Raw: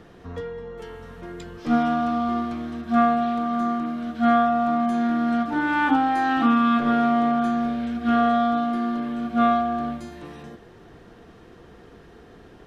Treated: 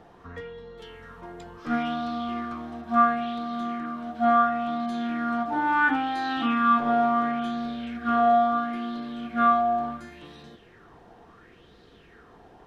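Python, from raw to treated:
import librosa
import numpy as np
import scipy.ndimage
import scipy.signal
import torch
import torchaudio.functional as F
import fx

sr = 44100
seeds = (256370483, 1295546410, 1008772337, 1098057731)

y = fx.bell_lfo(x, sr, hz=0.72, low_hz=770.0, high_hz=4100.0, db=13)
y = F.gain(torch.from_numpy(y), -7.0).numpy()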